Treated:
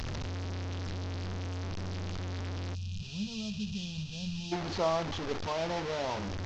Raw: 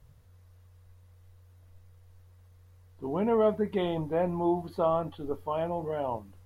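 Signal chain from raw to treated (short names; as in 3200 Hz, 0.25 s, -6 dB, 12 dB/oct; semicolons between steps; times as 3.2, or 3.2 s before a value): delta modulation 32 kbps, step -27 dBFS; spectral gain 2.74–4.52, 230–2400 Hz -25 dB; gain -3 dB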